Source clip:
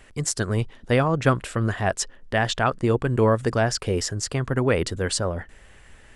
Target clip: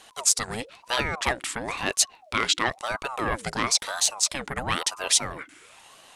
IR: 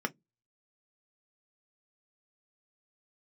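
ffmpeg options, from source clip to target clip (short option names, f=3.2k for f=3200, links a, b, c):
-af "acontrast=88,tiltshelf=f=1.1k:g=-9.5,aeval=exprs='val(0)*sin(2*PI*710*n/s+710*0.6/1*sin(2*PI*1*n/s))':c=same,volume=-6.5dB"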